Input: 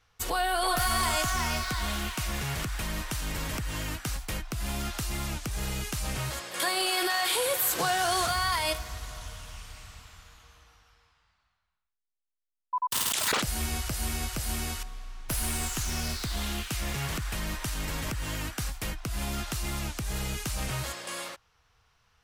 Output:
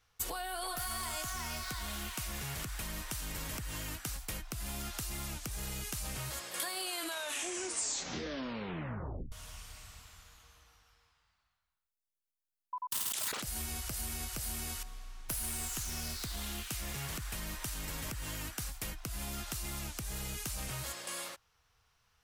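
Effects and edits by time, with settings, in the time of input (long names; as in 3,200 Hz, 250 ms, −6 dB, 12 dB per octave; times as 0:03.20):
0:06.82: tape stop 2.50 s
whole clip: downward compressor, threshold −31 dBFS; high-shelf EQ 6,600 Hz +8.5 dB; level −6 dB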